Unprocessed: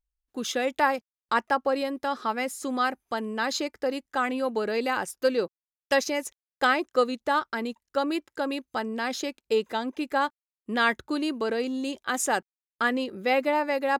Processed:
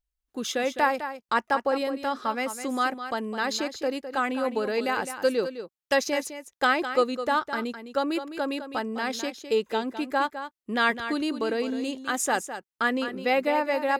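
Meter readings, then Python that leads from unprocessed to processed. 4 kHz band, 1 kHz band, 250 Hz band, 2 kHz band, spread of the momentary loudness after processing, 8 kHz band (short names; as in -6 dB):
+0.5 dB, +0.5 dB, +0.5 dB, +0.5 dB, 7 LU, +0.5 dB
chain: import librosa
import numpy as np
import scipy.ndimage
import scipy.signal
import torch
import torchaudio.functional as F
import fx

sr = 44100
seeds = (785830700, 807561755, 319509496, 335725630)

y = x + 10.0 ** (-10.5 / 20.0) * np.pad(x, (int(208 * sr / 1000.0), 0))[:len(x)]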